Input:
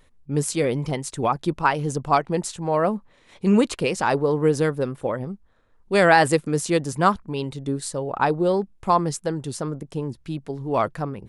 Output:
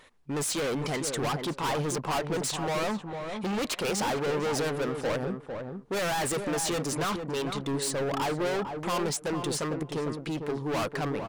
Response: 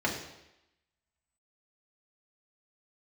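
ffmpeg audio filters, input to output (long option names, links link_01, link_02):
-filter_complex "[0:a]asplit=2[link_01][link_02];[link_02]highpass=frequency=720:poles=1,volume=22dB,asoftclip=type=tanh:threshold=-3.5dB[link_03];[link_01][link_03]amix=inputs=2:normalize=0,lowpass=frequency=4500:poles=1,volume=-6dB,asoftclip=type=hard:threshold=-21dB,asplit=2[link_04][link_05];[link_05]adelay=452,lowpass=frequency=1100:poles=1,volume=-5dB,asplit=2[link_06][link_07];[link_07]adelay=452,lowpass=frequency=1100:poles=1,volume=0.17,asplit=2[link_08][link_09];[link_09]adelay=452,lowpass=frequency=1100:poles=1,volume=0.17[link_10];[link_06][link_08][link_10]amix=inputs=3:normalize=0[link_11];[link_04][link_11]amix=inputs=2:normalize=0,volume=-7dB"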